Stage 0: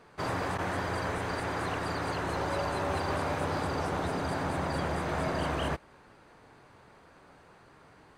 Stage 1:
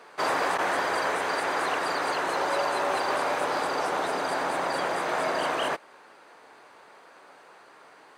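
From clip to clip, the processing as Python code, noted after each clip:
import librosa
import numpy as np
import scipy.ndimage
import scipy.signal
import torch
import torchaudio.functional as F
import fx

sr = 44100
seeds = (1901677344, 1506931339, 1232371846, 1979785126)

y = fx.rider(x, sr, range_db=10, speed_s=2.0)
y = scipy.signal.sosfilt(scipy.signal.butter(2, 450.0, 'highpass', fs=sr, output='sos'), y)
y = y * librosa.db_to_amplitude(7.0)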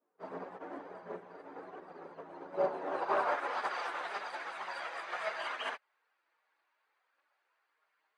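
y = fx.filter_sweep_bandpass(x, sr, from_hz=230.0, to_hz=2100.0, start_s=2.53, end_s=3.75, q=0.83)
y = fx.chorus_voices(y, sr, voices=4, hz=0.33, base_ms=14, depth_ms=3.4, mix_pct=70)
y = fx.upward_expand(y, sr, threshold_db=-45.0, expansion=2.5)
y = y * librosa.db_to_amplitude(3.0)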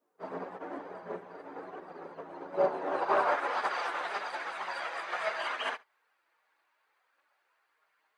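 y = x + 10.0 ** (-22.5 / 20.0) * np.pad(x, (int(71 * sr / 1000.0), 0))[:len(x)]
y = y * librosa.db_to_amplitude(4.0)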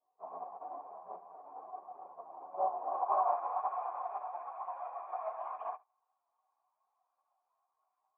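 y = fx.formant_cascade(x, sr, vowel='a')
y = y * librosa.db_to_amplitude(5.5)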